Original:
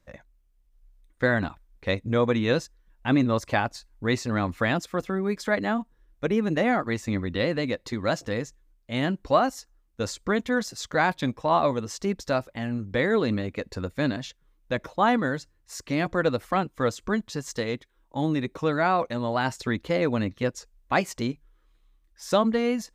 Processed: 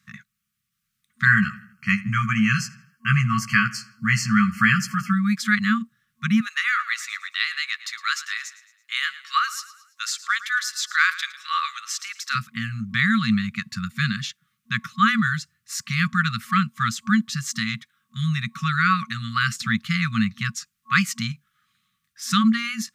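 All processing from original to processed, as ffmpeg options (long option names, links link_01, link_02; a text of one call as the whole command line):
ffmpeg -i in.wav -filter_complex "[0:a]asettb=1/sr,asplit=3[link_01][link_02][link_03];[link_01]atrim=end=1.254[link_04];[link_02]atrim=start=1.25:end=5.13,asetpts=PTS-STARTPTS,afade=type=in:duration=0.004:curve=qsin,afade=type=out:start_time=3.876:duration=0.004:curve=qsin,asuperstop=centerf=3700:order=20:qfactor=3.9,asplit=2[link_05][link_06];[link_06]adelay=15,volume=-4dB[link_07];[link_05][link_07]amix=inputs=2:normalize=0,atrim=end_sample=171108,asplit=2[link_08][link_09];[link_09]adelay=81,lowpass=frequency=4300:poles=1,volume=-18.5dB,asplit=2[link_10][link_11];[link_11]adelay=81,lowpass=frequency=4300:poles=1,volume=0.51,asplit=2[link_12][link_13];[link_13]adelay=81,lowpass=frequency=4300:poles=1,volume=0.51,asplit=2[link_14][link_15];[link_15]adelay=81,lowpass=frequency=4300:poles=1,volume=0.51[link_16];[link_08][link_10][link_12][link_14][link_16]amix=inputs=5:normalize=0,atrim=end_sample=171108[link_17];[link_03]atrim=start=5.126[link_18];[link_04][link_17]acrossfade=duration=0.004:curve1=hsin:curve2=qsin[link_19];[link_19][link_18]acrossfade=duration=0.004:curve1=qsin:curve2=hsin,asettb=1/sr,asplit=3[link_20][link_21][link_22];[link_20]atrim=end=6.404[link_23];[link_21]atrim=start=6.4:end=12.35,asetpts=PTS-STARTPTS,afade=type=in:duration=0.004:curve=qsin,afade=type=out:start_time=5.946:duration=0.004:curve=qsin,highpass=frequency=1100:width=0.5412,highpass=frequency=1100:width=1.3066,aecho=1:1:111|222|333|444:0.15|0.0673|0.0303|0.0136,atrim=end_sample=262395[link_24];[link_22]atrim=start=12.346[link_25];[link_23][link_24]acrossfade=duration=0.004:curve1=hsin:curve2=qsin[link_26];[link_26][link_25]acrossfade=duration=0.004:curve1=qsin:curve2=hsin,highpass=frequency=130:width=0.5412,highpass=frequency=130:width=1.3066,afftfilt=real='re*(1-between(b*sr/4096,230,1100))':imag='im*(1-between(b*sr/4096,230,1100))':win_size=4096:overlap=0.75,volume=8.5dB" out.wav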